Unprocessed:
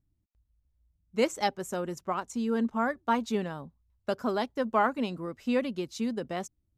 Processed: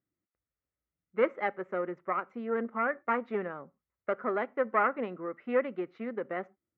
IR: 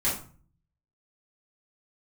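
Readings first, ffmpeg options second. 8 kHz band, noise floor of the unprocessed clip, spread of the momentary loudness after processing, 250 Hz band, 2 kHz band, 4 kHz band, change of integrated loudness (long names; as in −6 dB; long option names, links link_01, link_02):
below −35 dB, −76 dBFS, 10 LU, −7.0 dB, +1.5 dB, below −15 dB, −1.5 dB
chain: -filter_complex "[0:a]aeval=exprs='(tanh(8.91*val(0)+0.55)-tanh(0.55))/8.91':channel_layout=same,highpass=250,equalizer=frequency=260:width_type=q:width=4:gain=-4,equalizer=frequency=370:width_type=q:width=4:gain=3,equalizer=frequency=520:width_type=q:width=4:gain=5,equalizer=frequency=900:width_type=q:width=4:gain=-4,equalizer=frequency=1300:width_type=q:width=4:gain=8,equalizer=frequency=2000:width_type=q:width=4:gain=8,lowpass=frequency=2100:width=0.5412,lowpass=frequency=2100:width=1.3066,asplit=2[link_01][link_02];[1:a]atrim=start_sample=2205,atrim=end_sample=6174[link_03];[link_02][link_03]afir=irnorm=-1:irlink=0,volume=-31dB[link_04];[link_01][link_04]amix=inputs=2:normalize=0"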